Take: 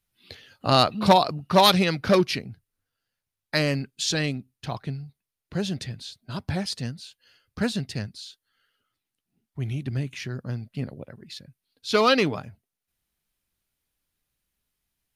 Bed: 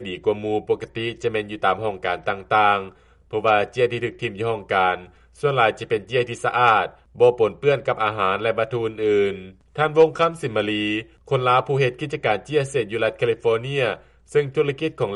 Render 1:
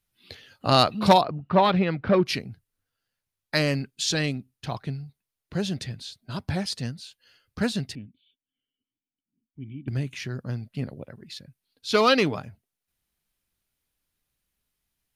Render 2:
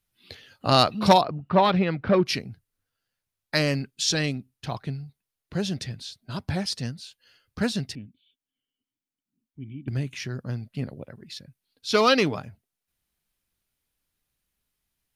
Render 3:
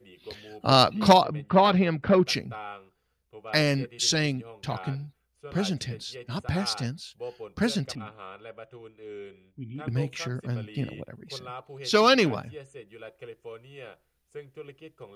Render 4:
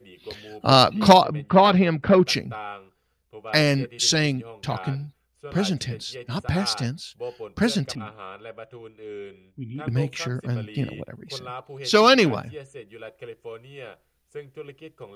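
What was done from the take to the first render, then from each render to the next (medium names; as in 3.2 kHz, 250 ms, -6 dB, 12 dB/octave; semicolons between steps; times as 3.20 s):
1.21–2.26 s: distance through air 470 m; 7.95–9.88 s: cascade formant filter i
dynamic bell 5.5 kHz, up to +6 dB, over -52 dBFS, Q 6.7
add bed -22.5 dB
trim +4 dB; peak limiter -1 dBFS, peak gain reduction 1 dB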